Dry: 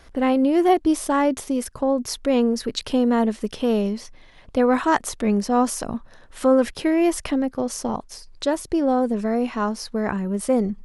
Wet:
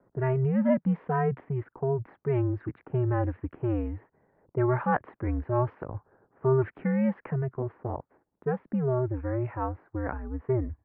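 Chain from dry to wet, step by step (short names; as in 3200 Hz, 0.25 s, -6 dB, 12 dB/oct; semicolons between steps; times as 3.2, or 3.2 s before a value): mistuned SSB -130 Hz 210–2200 Hz; low-pass opened by the level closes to 660 Hz, open at -14.5 dBFS; gain -6.5 dB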